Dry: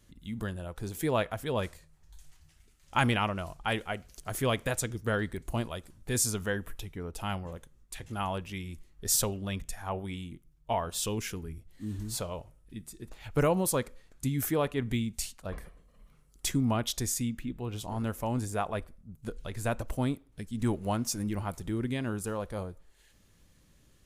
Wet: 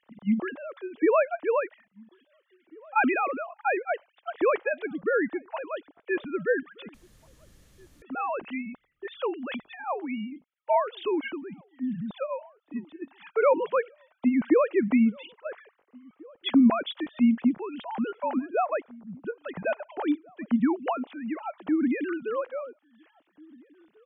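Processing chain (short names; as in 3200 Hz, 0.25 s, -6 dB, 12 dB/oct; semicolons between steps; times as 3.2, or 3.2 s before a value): sine-wave speech; 6.94–8.02 room tone; 20.9–21.69 HPF 380 Hz 12 dB/oct; outdoor echo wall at 290 m, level -26 dB; gain +5 dB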